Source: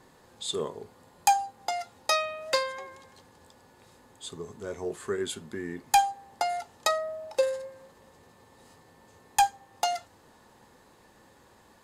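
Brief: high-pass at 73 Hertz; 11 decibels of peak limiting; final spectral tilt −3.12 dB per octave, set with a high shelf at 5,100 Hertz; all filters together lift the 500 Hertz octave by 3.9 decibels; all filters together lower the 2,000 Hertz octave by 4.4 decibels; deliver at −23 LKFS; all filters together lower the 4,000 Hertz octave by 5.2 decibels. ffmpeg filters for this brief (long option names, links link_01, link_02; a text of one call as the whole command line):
ffmpeg -i in.wav -af "highpass=73,equalizer=frequency=500:width_type=o:gain=5,equalizer=frequency=2000:width_type=o:gain=-4.5,equalizer=frequency=4000:width_type=o:gain=-7.5,highshelf=frequency=5100:gain=4.5,volume=9.5dB,alimiter=limit=-10.5dB:level=0:latency=1" out.wav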